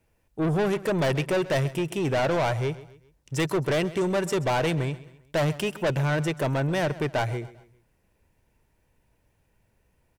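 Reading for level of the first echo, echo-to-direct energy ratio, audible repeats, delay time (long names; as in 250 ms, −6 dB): −17.5 dB, −16.5 dB, 3, 132 ms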